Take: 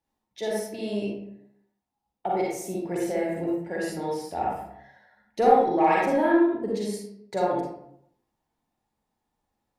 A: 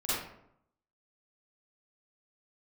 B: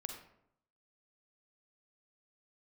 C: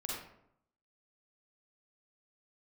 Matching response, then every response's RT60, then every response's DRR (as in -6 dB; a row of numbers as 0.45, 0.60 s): C; 0.75, 0.75, 0.75 s; -12.5, 3.5, -4.5 dB